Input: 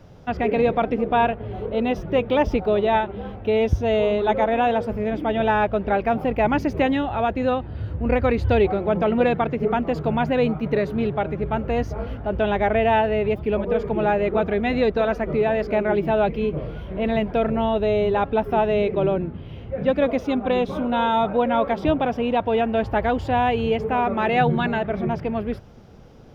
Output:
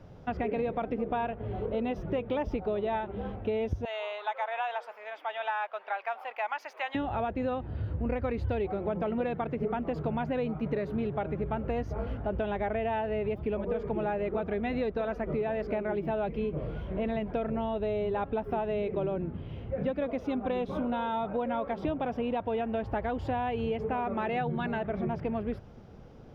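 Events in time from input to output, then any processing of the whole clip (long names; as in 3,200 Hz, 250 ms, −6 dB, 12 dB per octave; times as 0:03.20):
0:03.85–0:06.95: high-pass filter 820 Hz 24 dB per octave
whole clip: downward compressor, threshold −24 dBFS; high-shelf EQ 3,500 Hz −8 dB; level −3.5 dB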